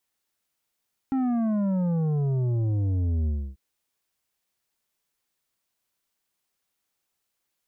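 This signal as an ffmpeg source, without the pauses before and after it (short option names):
-f lavfi -i "aevalsrc='0.0708*clip((2.44-t)/0.29,0,1)*tanh(2.66*sin(2*PI*270*2.44/log(65/270)*(exp(log(65/270)*t/2.44)-1)))/tanh(2.66)':d=2.44:s=44100"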